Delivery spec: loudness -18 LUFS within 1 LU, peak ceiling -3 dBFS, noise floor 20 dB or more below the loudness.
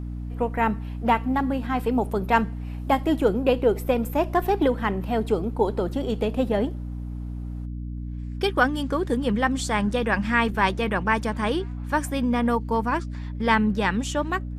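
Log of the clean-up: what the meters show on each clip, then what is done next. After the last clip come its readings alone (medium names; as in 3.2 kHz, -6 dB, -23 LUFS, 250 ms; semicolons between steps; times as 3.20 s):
hum 60 Hz; highest harmonic 300 Hz; hum level -29 dBFS; loudness -24.5 LUFS; peak level -5.0 dBFS; loudness target -18.0 LUFS
-> hum notches 60/120/180/240/300 Hz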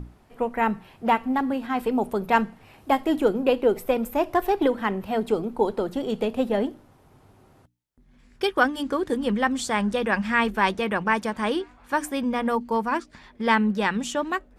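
hum not found; loudness -24.5 LUFS; peak level -5.5 dBFS; loudness target -18.0 LUFS
-> trim +6.5 dB; peak limiter -3 dBFS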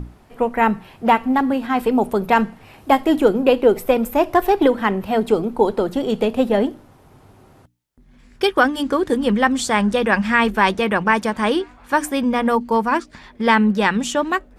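loudness -18.5 LUFS; peak level -3.0 dBFS; noise floor -50 dBFS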